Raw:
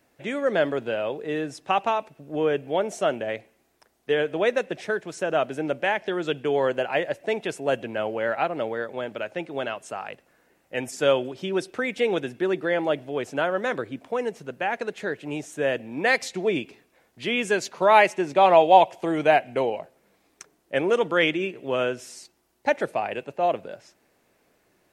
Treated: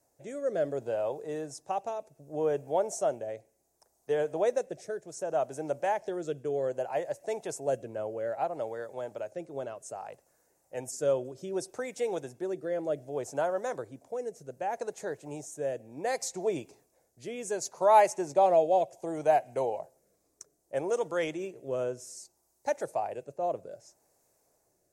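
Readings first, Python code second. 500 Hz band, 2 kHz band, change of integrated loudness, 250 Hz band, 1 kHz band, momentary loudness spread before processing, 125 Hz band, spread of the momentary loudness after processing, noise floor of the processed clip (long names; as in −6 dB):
−6.0 dB, −16.0 dB, −7.0 dB, −10.0 dB, −7.0 dB, 12 LU, −7.5 dB, 14 LU, −74 dBFS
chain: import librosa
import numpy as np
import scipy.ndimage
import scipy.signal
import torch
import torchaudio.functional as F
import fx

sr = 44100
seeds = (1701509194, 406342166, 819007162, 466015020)

y = fx.curve_eq(x, sr, hz=(140.0, 210.0, 600.0, 860.0, 1300.0, 3100.0, 6500.0, 13000.0), db=(0, -8, 2, 2, -8, -19, 0, -4))
y = fx.rotary(y, sr, hz=0.65)
y = fx.high_shelf(y, sr, hz=3000.0, db=11.0)
y = y * 10.0 ** (-4.5 / 20.0)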